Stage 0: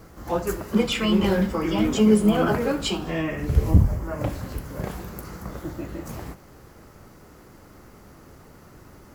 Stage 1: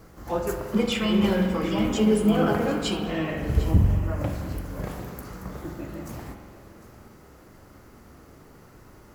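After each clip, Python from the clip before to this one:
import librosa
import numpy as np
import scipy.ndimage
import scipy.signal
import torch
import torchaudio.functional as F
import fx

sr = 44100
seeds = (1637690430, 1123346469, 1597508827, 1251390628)

y = x + 10.0 ** (-16.0 / 20.0) * np.pad(x, (int(750 * sr / 1000.0), 0))[:len(x)]
y = fx.rev_spring(y, sr, rt60_s=1.9, pass_ms=(43,), chirp_ms=30, drr_db=5.0)
y = y * librosa.db_to_amplitude(-3.0)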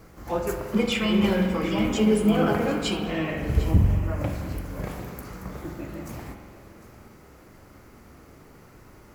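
y = fx.peak_eq(x, sr, hz=2300.0, db=4.5, octaves=0.32)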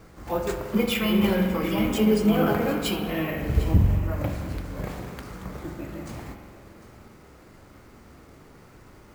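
y = np.repeat(x[::3], 3)[:len(x)]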